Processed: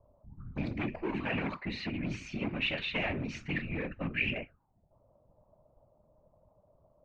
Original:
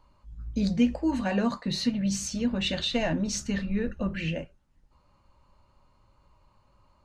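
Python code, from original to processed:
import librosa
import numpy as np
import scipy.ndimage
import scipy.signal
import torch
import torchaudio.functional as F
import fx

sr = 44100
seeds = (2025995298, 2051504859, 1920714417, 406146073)

y = np.clip(10.0 ** (25.5 / 20.0) * x, -1.0, 1.0) / 10.0 ** (25.5 / 20.0)
y = fx.whisperise(y, sr, seeds[0])
y = fx.envelope_lowpass(y, sr, base_hz=580.0, top_hz=2400.0, q=6.7, full_db=-30.5, direction='up')
y = y * 10.0 ** (-6.0 / 20.0)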